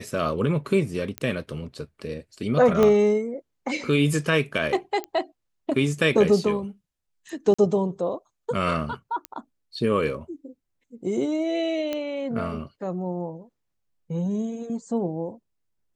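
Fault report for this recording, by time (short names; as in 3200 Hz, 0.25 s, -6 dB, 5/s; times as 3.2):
1.18 pop -14 dBFS
2.83 pop -9 dBFS
5.04 pop -17 dBFS
7.54–7.58 gap 45 ms
9.25 pop -16 dBFS
11.93 pop -15 dBFS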